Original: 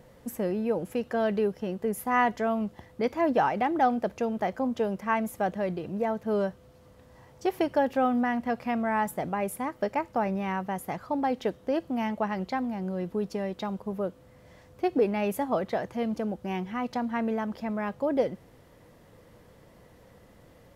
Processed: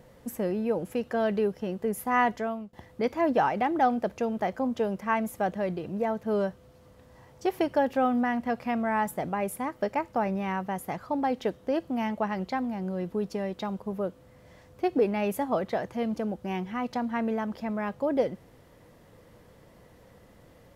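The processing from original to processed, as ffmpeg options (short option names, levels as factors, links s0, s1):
-filter_complex "[0:a]asplit=2[s0][s1];[s0]atrim=end=2.73,asetpts=PTS-STARTPTS,afade=t=out:st=2.31:d=0.42:silence=0.0891251[s2];[s1]atrim=start=2.73,asetpts=PTS-STARTPTS,afade=t=in:d=0.004:c=hsin:silence=0.0891251[s3];[s2][s3]concat=n=2:v=0:a=1"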